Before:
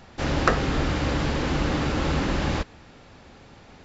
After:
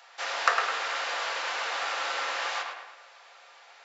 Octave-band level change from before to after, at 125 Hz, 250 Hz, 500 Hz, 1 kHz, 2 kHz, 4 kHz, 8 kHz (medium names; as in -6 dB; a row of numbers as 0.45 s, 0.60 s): under -40 dB, -32.5 dB, -9.5 dB, 0.0 dB, +1.0 dB, +0.5 dB, no reading